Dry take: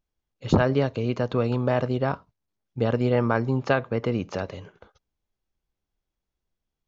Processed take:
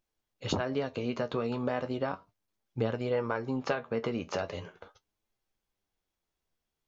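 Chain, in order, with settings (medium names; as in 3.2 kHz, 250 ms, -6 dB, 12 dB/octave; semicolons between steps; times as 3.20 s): bass shelf 230 Hz -8.5 dB; compression 4:1, threshold -31 dBFS, peak gain reduction 12 dB; flange 0.37 Hz, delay 8.6 ms, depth 4.8 ms, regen +49%; trim +6.5 dB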